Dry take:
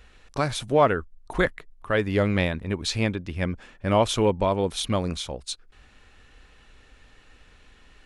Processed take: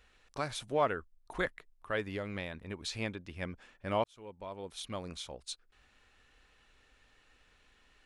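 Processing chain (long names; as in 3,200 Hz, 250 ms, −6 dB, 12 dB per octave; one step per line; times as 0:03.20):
low-shelf EQ 350 Hz −6.5 dB
0:02.06–0:02.93: downward compressor 4 to 1, threshold −26 dBFS, peak gain reduction 6 dB
0:04.04–0:05.38: fade in
level −9 dB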